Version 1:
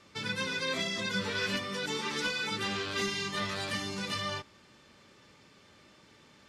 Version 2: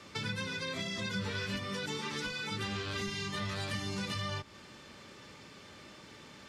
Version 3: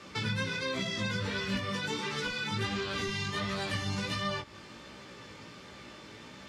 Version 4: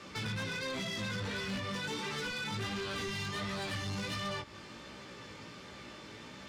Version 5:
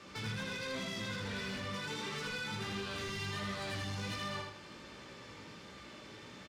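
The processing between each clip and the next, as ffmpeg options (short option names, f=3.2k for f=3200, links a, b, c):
-filter_complex "[0:a]acrossover=split=140[a][b];[b]acompressor=threshold=-43dB:ratio=6[c];[a][c]amix=inputs=2:normalize=0,volume=6.5dB"
-af "highshelf=f=6.2k:g=-5,flanger=delay=15:depth=4.2:speed=1.4,volume=7dB"
-af "asoftclip=type=tanh:threshold=-33dB"
-af "aecho=1:1:80|160|240|320|400:0.631|0.246|0.096|0.0374|0.0146,volume=-4dB"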